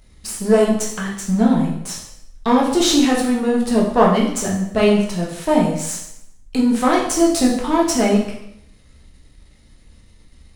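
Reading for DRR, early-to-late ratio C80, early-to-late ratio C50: −2.5 dB, 7.5 dB, 4.5 dB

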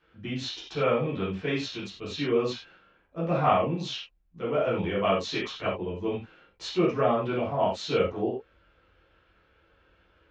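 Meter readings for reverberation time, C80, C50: non-exponential decay, 9.0 dB, 3.5 dB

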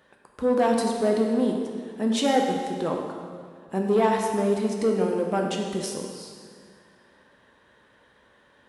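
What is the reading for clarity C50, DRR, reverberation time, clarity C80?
3.0 dB, 1.0 dB, 2.1 s, 4.0 dB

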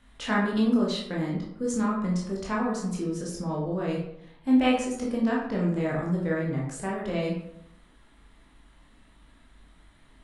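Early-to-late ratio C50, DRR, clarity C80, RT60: 3.0 dB, −4.0 dB, 6.5 dB, 0.75 s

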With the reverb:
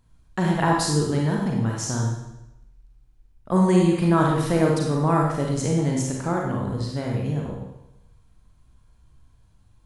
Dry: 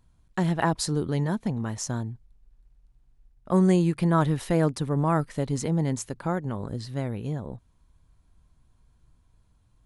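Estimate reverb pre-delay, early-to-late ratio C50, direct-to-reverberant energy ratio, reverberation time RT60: 35 ms, 0.5 dB, −1.5 dB, 0.90 s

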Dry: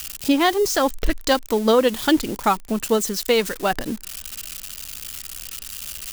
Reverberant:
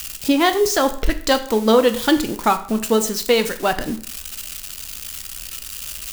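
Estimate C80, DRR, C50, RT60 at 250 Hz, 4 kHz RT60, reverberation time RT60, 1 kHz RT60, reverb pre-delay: 17.0 dB, 8.0 dB, 13.5 dB, 0.55 s, 0.50 s, 0.55 s, 0.55 s, 9 ms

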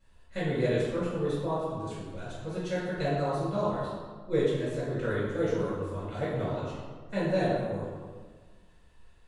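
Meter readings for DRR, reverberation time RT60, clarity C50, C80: −9.5 dB, 1.5 s, −1.5 dB, 1.0 dB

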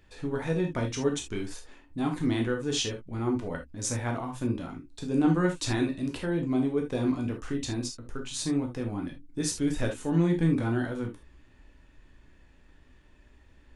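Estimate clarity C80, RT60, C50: 20.0 dB, non-exponential decay, 9.0 dB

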